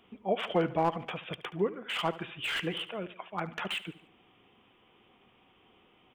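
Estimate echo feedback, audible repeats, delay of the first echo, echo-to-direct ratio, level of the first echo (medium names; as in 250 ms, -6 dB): 48%, 3, 73 ms, -15.5 dB, -16.5 dB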